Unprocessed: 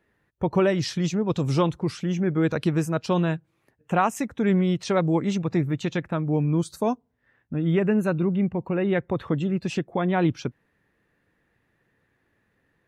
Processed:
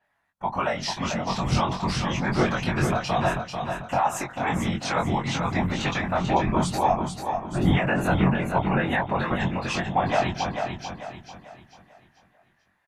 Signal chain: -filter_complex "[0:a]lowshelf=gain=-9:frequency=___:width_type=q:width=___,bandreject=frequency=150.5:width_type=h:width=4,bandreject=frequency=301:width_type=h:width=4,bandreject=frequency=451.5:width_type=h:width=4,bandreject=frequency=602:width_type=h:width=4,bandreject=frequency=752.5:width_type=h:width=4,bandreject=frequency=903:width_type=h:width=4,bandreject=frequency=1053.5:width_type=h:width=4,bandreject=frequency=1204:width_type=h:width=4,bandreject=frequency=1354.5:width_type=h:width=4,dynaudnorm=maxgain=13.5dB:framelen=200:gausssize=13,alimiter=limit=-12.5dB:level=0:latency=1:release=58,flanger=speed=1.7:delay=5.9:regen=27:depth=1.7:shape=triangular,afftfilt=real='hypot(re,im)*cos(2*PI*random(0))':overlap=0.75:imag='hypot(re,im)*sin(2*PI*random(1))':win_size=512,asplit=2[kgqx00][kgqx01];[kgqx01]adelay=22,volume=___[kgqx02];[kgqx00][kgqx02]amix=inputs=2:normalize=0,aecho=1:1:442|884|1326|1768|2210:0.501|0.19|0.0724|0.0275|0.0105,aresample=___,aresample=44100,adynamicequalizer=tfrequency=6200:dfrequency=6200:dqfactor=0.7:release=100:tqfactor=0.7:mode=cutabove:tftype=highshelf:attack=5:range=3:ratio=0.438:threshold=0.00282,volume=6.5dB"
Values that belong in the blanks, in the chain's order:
570, 3, -3dB, 32000